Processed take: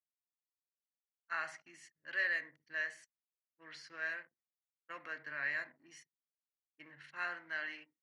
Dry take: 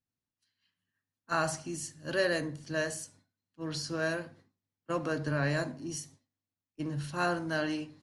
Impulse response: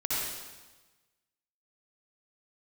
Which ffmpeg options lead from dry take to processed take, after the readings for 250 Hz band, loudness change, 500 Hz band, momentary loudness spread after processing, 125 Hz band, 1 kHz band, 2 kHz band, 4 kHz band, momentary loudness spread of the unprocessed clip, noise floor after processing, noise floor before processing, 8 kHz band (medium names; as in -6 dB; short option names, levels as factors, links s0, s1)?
-26.0 dB, -6.0 dB, -20.0 dB, 22 LU, under -30 dB, -11.0 dB, -1.0 dB, -12.0 dB, 10 LU, under -85 dBFS, under -85 dBFS, -20.5 dB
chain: -af "anlmdn=0.0398,bandpass=f=2000:t=q:w=6.4:csg=0,volume=2.11"